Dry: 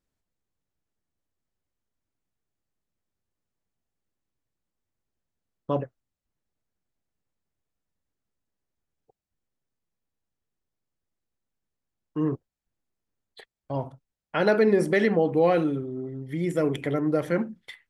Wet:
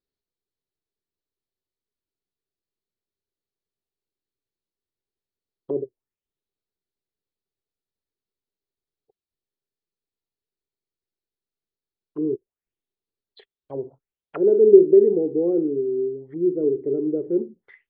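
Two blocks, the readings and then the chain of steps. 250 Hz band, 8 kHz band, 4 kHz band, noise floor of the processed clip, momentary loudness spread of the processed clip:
+3.0 dB, can't be measured, below −15 dB, below −85 dBFS, 23 LU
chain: parametric band 400 Hz +13 dB 0.58 octaves
envelope-controlled low-pass 380–4,300 Hz down, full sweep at −22.5 dBFS
level −11.5 dB

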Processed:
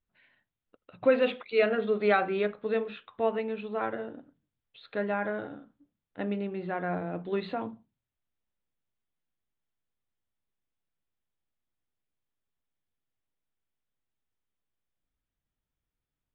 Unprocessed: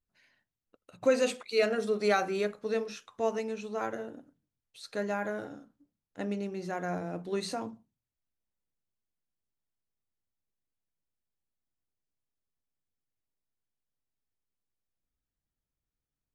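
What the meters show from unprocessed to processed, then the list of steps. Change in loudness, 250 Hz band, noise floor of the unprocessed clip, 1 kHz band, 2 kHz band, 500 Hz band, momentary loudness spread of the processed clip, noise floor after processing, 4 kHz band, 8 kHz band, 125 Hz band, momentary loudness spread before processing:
+2.0 dB, +2.0 dB, below −85 dBFS, +2.5 dB, +3.0 dB, +2.0 dB, 14 LU, below −85 dBFS, −2.5 dB, below −30 dB, +2.0 dB, 13 LU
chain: elliptic low-pass filter 3,600 Hz, stop band 40 dB
level +3 dB

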